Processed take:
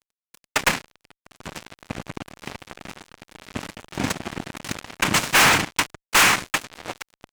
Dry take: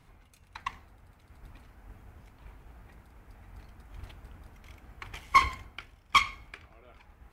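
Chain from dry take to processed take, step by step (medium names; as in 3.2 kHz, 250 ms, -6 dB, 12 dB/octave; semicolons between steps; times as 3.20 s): noise-vocoded speech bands 4; fuzz box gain 46 dB, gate -53 dBFS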